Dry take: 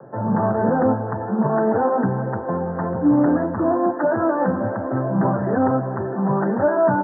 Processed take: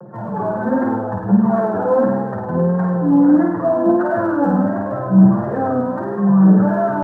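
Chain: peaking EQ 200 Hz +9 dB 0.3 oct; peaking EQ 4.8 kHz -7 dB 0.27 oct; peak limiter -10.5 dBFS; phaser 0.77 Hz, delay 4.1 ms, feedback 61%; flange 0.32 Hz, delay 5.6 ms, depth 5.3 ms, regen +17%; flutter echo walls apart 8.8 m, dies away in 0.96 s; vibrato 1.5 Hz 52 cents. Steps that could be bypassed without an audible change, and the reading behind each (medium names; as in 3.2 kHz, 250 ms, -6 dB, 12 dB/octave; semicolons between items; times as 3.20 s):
peaking EQ 4.8 kHz: input has nothing above 1.6 kHz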